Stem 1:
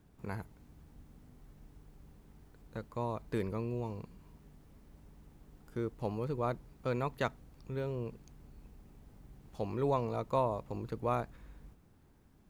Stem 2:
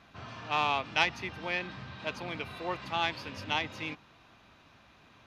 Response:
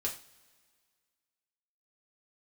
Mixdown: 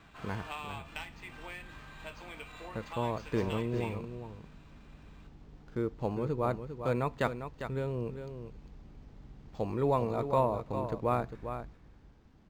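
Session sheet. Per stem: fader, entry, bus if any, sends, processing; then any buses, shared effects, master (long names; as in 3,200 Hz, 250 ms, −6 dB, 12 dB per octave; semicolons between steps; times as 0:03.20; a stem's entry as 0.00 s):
+2.5 dB, 0.00 s, send −20.5 dB, echo send −8.5 dB, no processing
−1.5 dB, 0.00 s, send −8 dB, no echo send, downward compressor 16 to 1, threshold −35 dBFS, peak gain reduction 16 dB; high-pass filter 680 Hz 6 dB per octave; automatic ducking −7 dB, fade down 1.80 s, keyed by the first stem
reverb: on, pre-delay 3 ms
echo: single-tap delay 401 ms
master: linearly interpolated sample-rate reduction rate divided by 4×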